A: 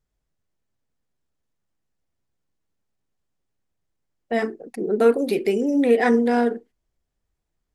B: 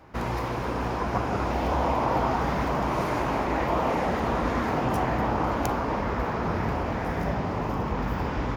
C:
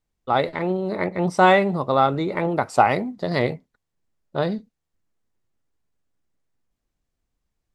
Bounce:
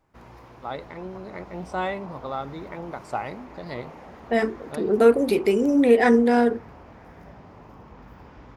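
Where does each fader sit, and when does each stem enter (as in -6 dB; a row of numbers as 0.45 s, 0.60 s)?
+1.0 dB, -18.0 dB, -13.0 dB; 0.00 s, 0.00 s, 0.35 s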